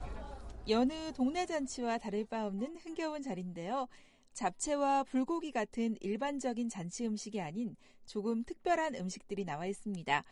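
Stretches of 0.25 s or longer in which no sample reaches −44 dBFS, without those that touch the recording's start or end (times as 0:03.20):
0:03.85–0:04.35
0:07.73–0:08.09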